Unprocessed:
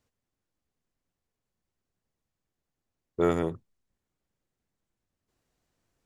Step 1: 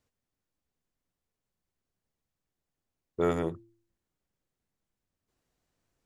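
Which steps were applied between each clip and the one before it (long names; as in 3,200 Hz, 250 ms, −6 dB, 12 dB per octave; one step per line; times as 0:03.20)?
hum removal 113.5 Hz, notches 3
level −2 dB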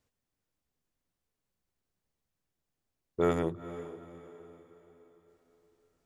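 feedback delay with all-pass diffusion 454 ms, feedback 44%, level −13.5 dB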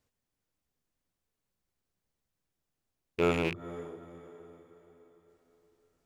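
loose part that buzzes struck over −38 dBFS, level −23 dBFS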